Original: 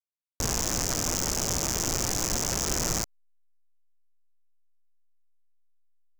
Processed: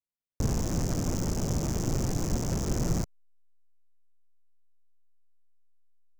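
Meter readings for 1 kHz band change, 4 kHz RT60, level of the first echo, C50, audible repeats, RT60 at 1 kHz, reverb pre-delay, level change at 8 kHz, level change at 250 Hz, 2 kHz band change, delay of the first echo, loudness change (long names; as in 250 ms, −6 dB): −5.5 dB, no reverb audible, no echo audible, no reverb audible, no echo audible, no reverb audible, no reverb audible, −12.0 dB, +4.5 dB, −9.5 dB, no echo audible, −3.5 dB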